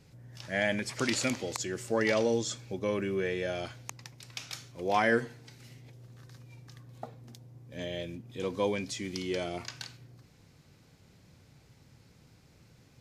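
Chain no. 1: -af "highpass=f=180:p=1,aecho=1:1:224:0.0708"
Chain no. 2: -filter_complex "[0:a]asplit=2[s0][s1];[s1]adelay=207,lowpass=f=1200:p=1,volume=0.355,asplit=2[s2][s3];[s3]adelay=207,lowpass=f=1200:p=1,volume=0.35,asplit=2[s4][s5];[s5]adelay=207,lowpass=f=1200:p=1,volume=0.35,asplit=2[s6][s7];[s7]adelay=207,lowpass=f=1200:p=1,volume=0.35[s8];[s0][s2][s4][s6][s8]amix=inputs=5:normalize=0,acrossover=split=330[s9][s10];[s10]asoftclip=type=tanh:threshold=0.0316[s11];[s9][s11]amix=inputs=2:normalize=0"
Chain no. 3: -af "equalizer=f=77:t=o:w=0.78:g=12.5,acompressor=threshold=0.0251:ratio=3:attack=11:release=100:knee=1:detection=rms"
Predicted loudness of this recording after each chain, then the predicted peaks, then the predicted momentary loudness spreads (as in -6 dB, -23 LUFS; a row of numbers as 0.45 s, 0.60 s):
-33.0 LUFS, -35.0 LUFS, -37.0 LUFS; -13.0 dBFS, -19.0 dBFS, -17.5 dBFS; 18 LU, 19 LU, 22 LU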